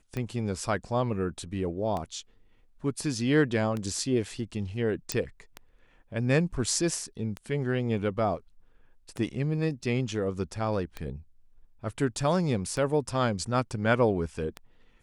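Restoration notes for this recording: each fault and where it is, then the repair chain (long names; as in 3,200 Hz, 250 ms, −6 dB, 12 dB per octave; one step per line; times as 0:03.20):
scratch tick 33 1/3 rpm −20 dBFS
0:05.12: click −11 dBFS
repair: click removal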